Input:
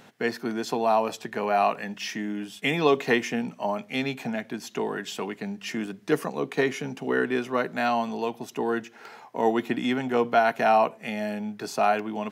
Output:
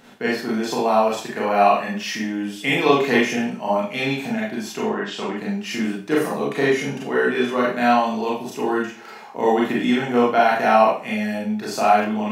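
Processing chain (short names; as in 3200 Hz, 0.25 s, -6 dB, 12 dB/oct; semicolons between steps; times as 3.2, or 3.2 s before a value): 4.68–5.36 treble ducked by the level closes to 2700 Hz, closed at -27 dBFS; Schroeder reverb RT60 0.4 s, combs from 29 ms, DRR -5 dB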